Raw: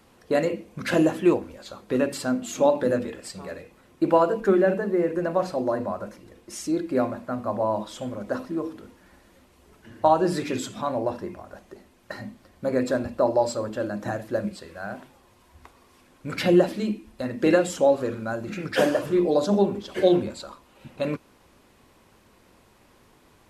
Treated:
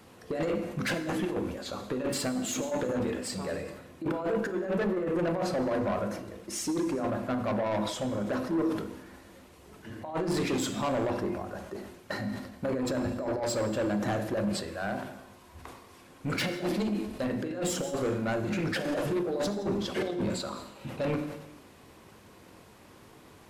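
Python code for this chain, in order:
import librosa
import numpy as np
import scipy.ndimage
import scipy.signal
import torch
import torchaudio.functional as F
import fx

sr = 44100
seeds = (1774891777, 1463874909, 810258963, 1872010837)

y = fx.highpass(x, sr, hz=170.0, slope=6)
y = fx.low_shelf(y, sr, hz=230.0, db=9.0)
y = fx.hum_notches(y, sr, base_hz=60, count=6)
y = fx.over_compress(y, sr, threshold_db=-24.0, ratio=-0.5)
y = 10.0 ** (-24.5 / 20.0) * np.tanh(y / 10.0 ** (-24.5 / 20.0))
y = fx.rev_gated(y, sr, seeds[0], gate_ms=460, shape='falling', drr_db=9.5)
y = fx.sustainer(y, sr, db_per_s=62.0)
y = F.gain(torch.from_numpy(y), -1.0).numpy()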